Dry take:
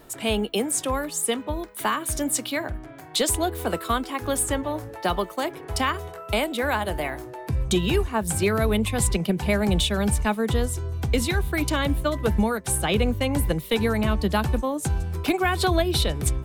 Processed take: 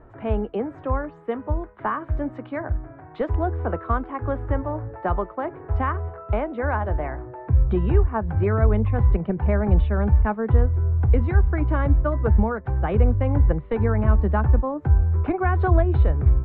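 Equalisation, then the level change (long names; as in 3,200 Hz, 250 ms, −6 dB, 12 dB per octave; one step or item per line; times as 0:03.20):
low-pass filter 1,600 Hz 24 dB per octave
low shelf with overshoot 130 Hz +7 dB, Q 1.5
0.0 dB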